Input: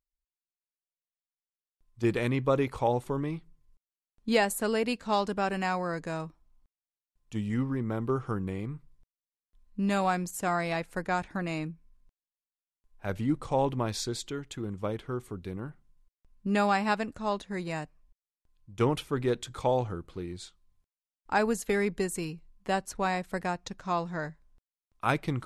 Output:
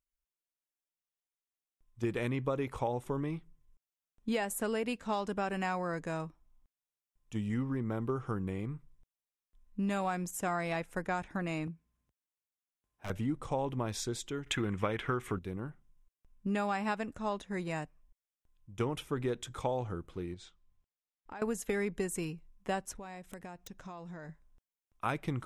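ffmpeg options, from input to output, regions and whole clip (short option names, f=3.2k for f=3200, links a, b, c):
-filter_complex "[0:a]asettb=1/sr,asplit=3[a][b][c];[a]atrim=end=11.674[d];[b]atrim=start=11.67:end=13.1,asetpts=PTS-STARTPTS,afade=t=in:d=0.004:c=qsin,afade=t=out:st=1.426:d=0.004:c=qsin,highpass=f=58:w=0.5412,highpass=f=58:w=1.3066,aeval=exprs='0.0266*(abs(mod(val(0)/0.0266+3,4)-2)-1)':c=same[e];[c]atrim=start=13.096[f];[d][e]acrossfade=d=0.004:c1=hsin:c2=qsin[g];[g][f]acrossfade=d=0.004:c1=qsin:c2=hsin,asettb=1/sr,asplit=3[h][i][j];[h]atrim=end=14.464[k];[i]atrim=start=14.46:end=15.39,asetpts=PTS-STARTPTS,afade=t=in:d=0.004:c=qsin,afade=t=out:st=0.926:d=0.004:c=qsin,equalizer=f=2k:t=o:w=1.7:g=13,acontrast=86[l];[j]atrim=start=15.386[m];[k][l]acrossfade=d=0.004:c1=hsin:c2=qsin[n];[n][m]acrossfade=d=0.004:c1=qsin:c2=hsin,asettb=1/sr,asplit=3[o][p][q];[o]atrim=end=20.344[r];[p]atrim=start=20.34:end=21.42,asetpts=PTS-STARTPTS,afade=t=in:d=0.004:c=qsin,afade=t=out:st=1.076:d=0.004:c=qsin,lowpass=5.4k,acompressor=threshold=-43dB:ratio=4:attack=3.2:release=140:knee=1:detection=peak[s];[q]atrim=start=21.416[t];[r][s]acrossfade=d=0.004:c1=hsin:c2=qsin[u];[u][t]acrossfade=d=0.004:c1=qsin:c2=hsin,asettb=1/sr,asplit=3[v][w][x];[v]atrim=end=22.914[y];[w]atrim=start=22.91:end=24.29,asetpts=PTS-STARTPTS,afade=t=in:d=0.004:c=qsin,afade=t=out:st=1.376:d=0.004:c=qsin,acompressor=threshold=-40dB:ratio=6:attack=3.2:release=140:knee=1:detection=peak,aeval=exprs='(mod(42.2*val(0)+1,2)-1)/42.2':c=same,equalizer=f=1.3k:w=1.2:g=-3[z];[x]atrim=start=24.286[aa];[y][z]acrossfade=d=0.004:c1=hsin:c2=qsin[ab];[ab][aa]acrossfade=d=0.004:c1=qsin:c2=hsin,acompressor=threshold=-27dB:ratio=6,equalizer=f=4.4k:t=o:w=0.21:g=-10.5,volume=-2dB"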